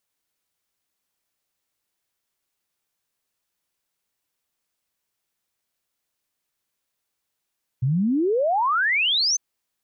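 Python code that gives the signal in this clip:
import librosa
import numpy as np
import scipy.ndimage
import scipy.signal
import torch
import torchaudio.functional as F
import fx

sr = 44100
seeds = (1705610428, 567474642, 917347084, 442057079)

y = fx.ess(sr, length_s=1.55, from_hz=120.0, to_hz=6400.0, level_db=-18.0)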